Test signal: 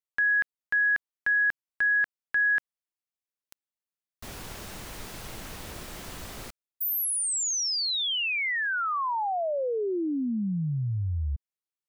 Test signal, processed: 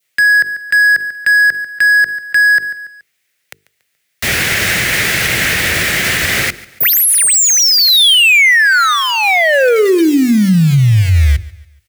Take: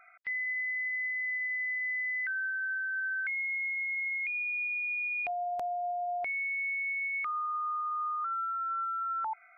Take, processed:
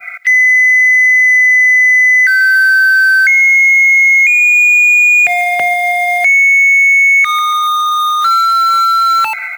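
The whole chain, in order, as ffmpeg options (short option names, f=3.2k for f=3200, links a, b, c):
-filter_complex "[0:a]acrossover=split=170|390[a][b][c];[c]asoftclip=type=tanh:threshold=-37dB[d];[a][b][d]amix=inputs=3:normalize=0,adynamicequalizer=threshold=0.00251:dfrequency=1700:dqfactor=1.4:tfrequency=1700:tqfactor=1.4:attack=5:release=100:ratio=0.4:range=3:mode=boostabove:tftype=bell,acrusher=bits=6:mode=log:mix=0:aa=0.000001,equalizer=f=250:t=o:w=1:g=-6,equalizer=f=1k:t=o:w=1:g=-12,equalizer=f=2k:t=o:w=1:g=11,asplit=2[e][f];[f]aecho=0:1:142|284|426:0.0841|0.0345|0.0141[g];[e][g]amix=inputs=2:normalize=0,acontrast=80,highpass=94,bandreject=f=50:t=h:w=6,bandreject=f=100:t=h:w=6,bandreject=f=150:t=h:w=6,bandreject=f=200:t=h:w=6,bandreject=f=250:t=h:w=6,bandreject=f=300:t=h:w=6,bandreject=f=350:t=h:w=6,bandreject=f=400:t=h:w=6,bandreject=f=450:t=h:w=6,alimiter=level_in=23.5dB:limit=-1dB:release=50:level=0:latency=1,volume=-3.5dB"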